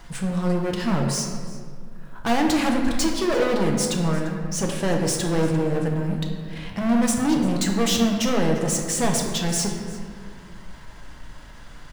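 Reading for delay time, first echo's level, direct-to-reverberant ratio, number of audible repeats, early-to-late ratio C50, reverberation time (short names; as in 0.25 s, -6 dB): 0.346 s, -18.5 dB, 0.5 dB, 1, 4.0 dB, 2.1 s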